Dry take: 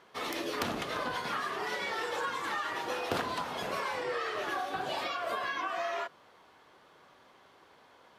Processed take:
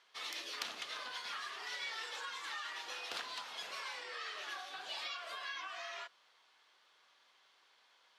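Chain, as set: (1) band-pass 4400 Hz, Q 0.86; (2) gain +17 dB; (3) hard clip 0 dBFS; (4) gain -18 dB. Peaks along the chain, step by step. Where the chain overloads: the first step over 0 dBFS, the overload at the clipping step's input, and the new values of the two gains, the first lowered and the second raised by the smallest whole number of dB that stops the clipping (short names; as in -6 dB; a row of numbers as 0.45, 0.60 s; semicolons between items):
-21.0, -4.0, -4.0, -22.0 dBFS; no overload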